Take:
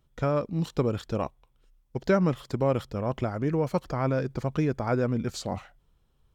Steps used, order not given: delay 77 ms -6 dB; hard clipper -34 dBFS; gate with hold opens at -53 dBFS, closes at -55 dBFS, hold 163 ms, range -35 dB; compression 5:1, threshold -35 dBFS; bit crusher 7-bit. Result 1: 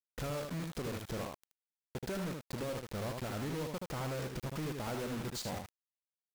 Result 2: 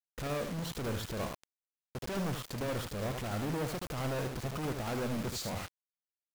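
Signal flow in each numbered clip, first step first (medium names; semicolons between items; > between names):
compression > bit crusher > gate with hold > delay > hard clipper; hard clipper > compression > delay > bit crusher > gate with hold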